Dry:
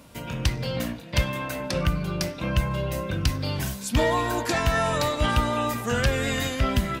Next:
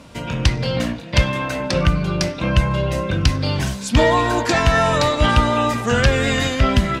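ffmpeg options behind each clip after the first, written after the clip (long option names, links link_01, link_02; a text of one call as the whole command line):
ffmpeg -i in.wav -af "lowpass=7100,volume=7.5dB" out.wav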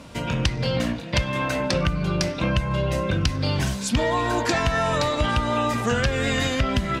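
ffmpeg -i in.wav -af "acompressor=threshold=-19dB:ratio=5" out.wav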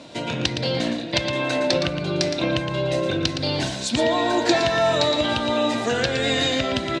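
ffmpeg -i in.wav -af "highpass=150,equalizer=frequency=190:width_type=q:width=4:gain=-6,equalizer=frequency=330:width_type=q:width=4:gain=7,equalizer=frequency=670:width_type=q:width=4:gain=6,equalizer=frequency=1200:width_type=q:width=4:gain=-6,equalizer=frequency=3900:width_type=q:width=4:gain=9,lowpass=frequency=8900:width=0.5412,lowpass=frequency=8900:width=1.3066,aecho=1:1:115:0.398" out.wav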